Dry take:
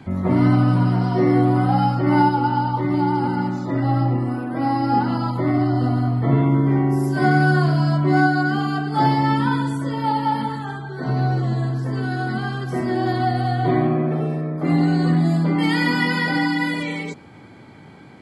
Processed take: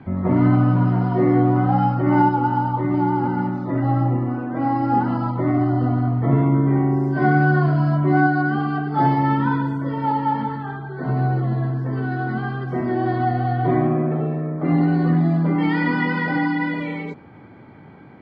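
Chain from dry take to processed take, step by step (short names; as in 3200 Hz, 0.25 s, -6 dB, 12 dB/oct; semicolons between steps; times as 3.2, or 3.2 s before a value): LPF 2000 Hz 12 dB/oct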